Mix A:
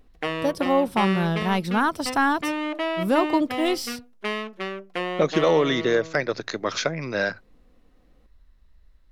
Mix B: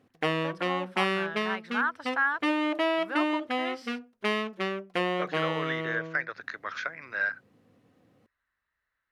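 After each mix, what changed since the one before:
speech: add band-pass filter 1.6 kHz, Q 2.9; master: add peaking EQ 100 Hz +13.5 dB 0.62 oct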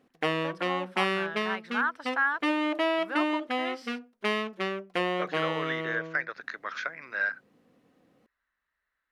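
master: add peaking EQ 100 Hz -13.5 dB 0.62 oct

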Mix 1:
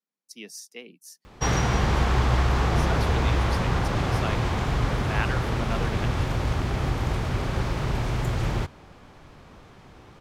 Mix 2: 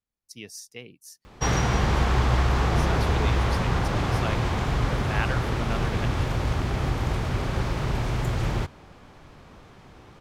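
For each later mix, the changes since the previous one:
speech: remove steep high-pass 160 Hz 72 dB/octave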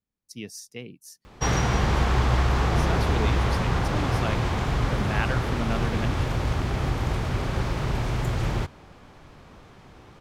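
speech: add peaking EQ 190 Hz +7.5 dB 2.1 oct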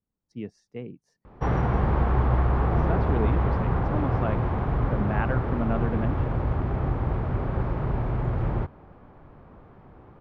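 speech +3.0 dB; master: add low-pass 1.2 kHz 12 dB/octave

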